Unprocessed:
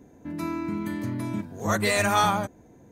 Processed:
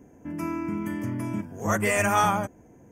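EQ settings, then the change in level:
Butterworth band-reject 4,000 Hz, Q 2.3
0.0 dB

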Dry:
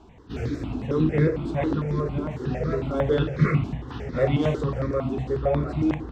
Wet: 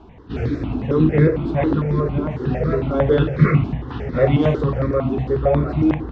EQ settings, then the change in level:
high-frequency loss of the air 170 metres
+6.5 dB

